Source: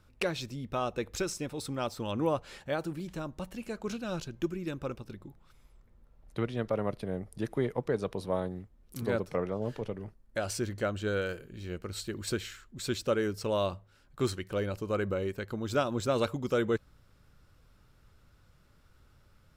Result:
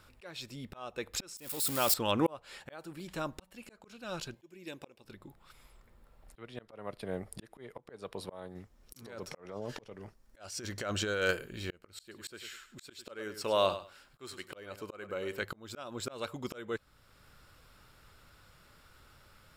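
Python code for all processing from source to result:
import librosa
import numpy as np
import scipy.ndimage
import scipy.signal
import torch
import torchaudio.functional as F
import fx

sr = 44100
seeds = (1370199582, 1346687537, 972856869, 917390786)

y = fx.chain(x, sr, fx.crossing_spikes(level_db=-30.5),
    fx.high_shelf(hz=7800.0, db=4.0),
    fx.env_flatten(amount_pct=70), at=(1.37, 1.94))
y = fx.chain(y, sr, fx.highpass(hz=300.0, slope=6),
    fx.peak_eq(hz=1300.0, db=-13.0, octaves=0.45), at=(4.34, 5.04))
y = fx.chain(y, sr, fx.peak_eq(hz=5900.0, db=10.5, octaves=0.41),
    fx.over_compress(threshold_db=-35.0, ratio=-1.0), at=(8.55, 11.31))
y = fx.chain(y, sr, fx.low_shelf(hz=170.0, db=-7.0),
    fx.echo_feedback(ms=101, feedback_pct=16, wet_db=-14), at=(12.01, 15.42))
y = fx.low_shelf(y, sr, hz=420.0, db=-11.0)
y = fx.notch(y, sr, hz=6100.0, q=8.8)
y = fx.auto_swell(y, sr, attack_ms=771.0)
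y = y * 10.0 ** (9.5 / 20.0)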